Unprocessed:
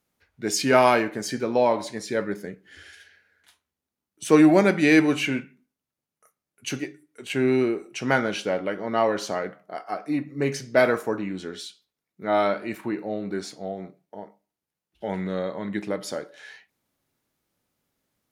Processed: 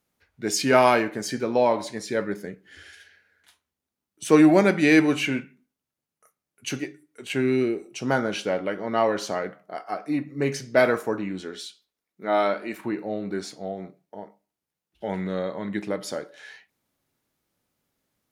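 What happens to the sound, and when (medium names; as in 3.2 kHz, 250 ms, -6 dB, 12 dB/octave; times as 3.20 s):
7.40–8.31 s: peaking EQ 630 Hz -> 3 kHz -10 dB 0.94 oct
11.41–12.79 s: peaking EQ 120 Hz -14 dB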